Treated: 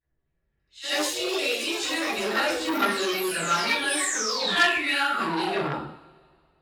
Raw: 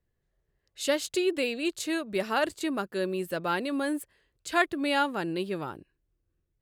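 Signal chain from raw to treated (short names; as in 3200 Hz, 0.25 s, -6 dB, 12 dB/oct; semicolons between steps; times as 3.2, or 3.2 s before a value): low-pass opened by the level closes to 1900 Hz, open at -23.5 dBFS; tilt shelf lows -5.5 dB, about 1200 Hz; vocal rider 0.5 s; phaser 0.36 Hz, delay 1.6 ms, feedback 35%; painted sound fall, 3.89–5.56, 620–9700 Hz -32 dBFS; dispersion lows, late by 42 ms, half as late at 1000 Hz; chorus voices 6, 0.93 Hz, delay 16 ms, depth 3 ms; pre-echo 78 ms -12 dB; two-slope reverb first 0.57 s, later 2.2 s, from -24 dB, DRR -5 dB; echoes that change speed 0.254 s, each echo +5 st, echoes 2, each echo -6 dB; core saturation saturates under 2300 Hz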